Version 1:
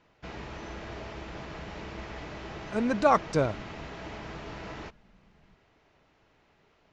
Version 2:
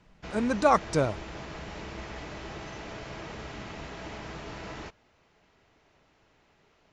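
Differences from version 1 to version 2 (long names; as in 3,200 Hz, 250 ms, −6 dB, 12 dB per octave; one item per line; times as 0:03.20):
speech: entry −2.40 s
master: remove high-frequency loss of the air 69 metres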